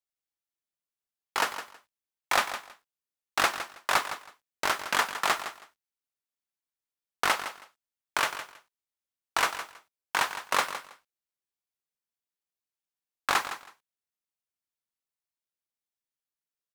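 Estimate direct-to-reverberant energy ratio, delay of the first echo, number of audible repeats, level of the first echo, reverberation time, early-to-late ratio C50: none, 0.161 s, 2, -11.5 dB, none, none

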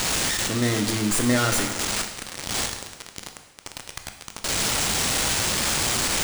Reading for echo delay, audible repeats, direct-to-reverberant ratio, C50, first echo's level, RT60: none, none, 5.5 dB, 8.0 dB, none, 1.2 s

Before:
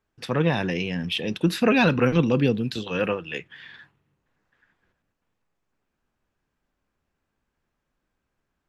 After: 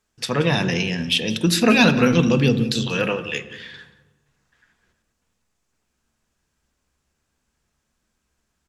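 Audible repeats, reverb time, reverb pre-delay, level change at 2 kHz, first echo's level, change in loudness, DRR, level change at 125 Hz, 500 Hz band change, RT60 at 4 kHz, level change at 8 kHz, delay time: 1, 1.1 s, 3 ms, +5.0 dB, -20.0 dB, +4.0 dB, 8.5 dB, +4.0 dB, +2.0 dB, 0.70 s, +14.0 dB, 0.18 s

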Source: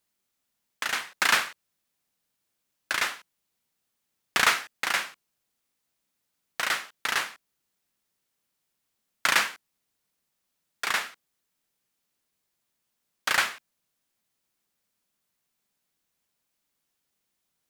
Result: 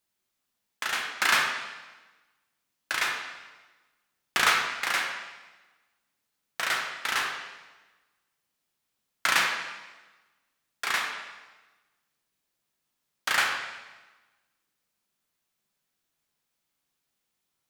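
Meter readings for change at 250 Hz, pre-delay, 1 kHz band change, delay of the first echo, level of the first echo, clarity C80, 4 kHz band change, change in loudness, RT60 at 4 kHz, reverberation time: -1.0 dB, 7 ms, +0.5 dB, none, none, 6.5 dB, 0.0 dB, -0.5 dB, 1.1 s, 1.2 s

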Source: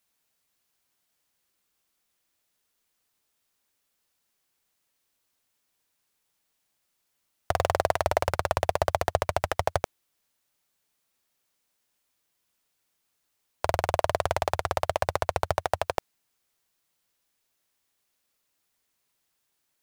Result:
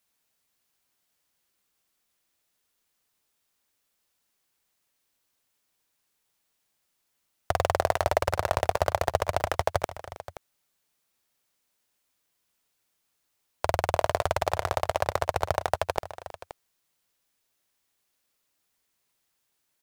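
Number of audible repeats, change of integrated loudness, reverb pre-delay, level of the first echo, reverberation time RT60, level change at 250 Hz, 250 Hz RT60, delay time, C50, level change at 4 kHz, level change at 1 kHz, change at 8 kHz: 2, 0.0 dB, none, -17.5 dB, none, 0.0 dB, none, 0.32 s, none, 0.0 dB, 0.0 dB, 0.0 dB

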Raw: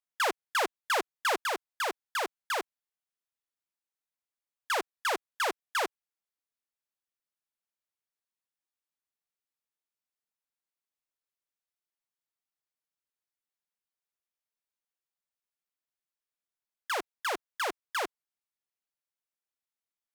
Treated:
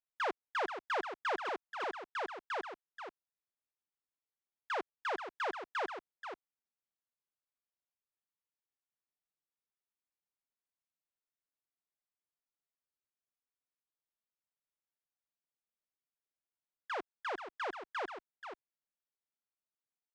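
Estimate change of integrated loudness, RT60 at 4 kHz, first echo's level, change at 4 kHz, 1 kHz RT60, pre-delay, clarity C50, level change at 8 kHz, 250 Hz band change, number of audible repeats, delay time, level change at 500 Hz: -7.5 dB, none, -8.5 dB, -12.0 dB, none, none, none, -21.0 dB, -4.0 dB, 1, 0.482 s, -4.5 dB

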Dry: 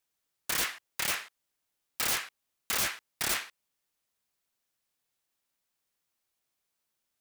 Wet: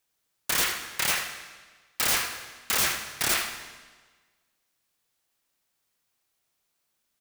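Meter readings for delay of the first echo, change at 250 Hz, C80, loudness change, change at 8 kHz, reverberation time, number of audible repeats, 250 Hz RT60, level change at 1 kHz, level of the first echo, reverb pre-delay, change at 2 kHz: 81 ms, +5.5 dB, 7.0 dB, +5.0 dB, +5.5 dB, 1.4 s, 1, 1.4 s, +6.0 dB, -10.5 dB, 21 ms, +5.5 dB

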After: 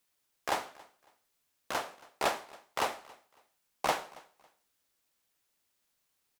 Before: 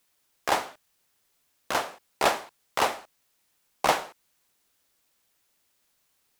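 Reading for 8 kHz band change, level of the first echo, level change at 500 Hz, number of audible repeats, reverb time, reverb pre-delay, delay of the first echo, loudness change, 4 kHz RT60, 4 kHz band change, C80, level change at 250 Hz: -7.0 dB, -23.0 dB, -7.0 dB, 2, none, none, 0.276 s, -7.0 dB, none, -7.0 dB, none, -7.0 dB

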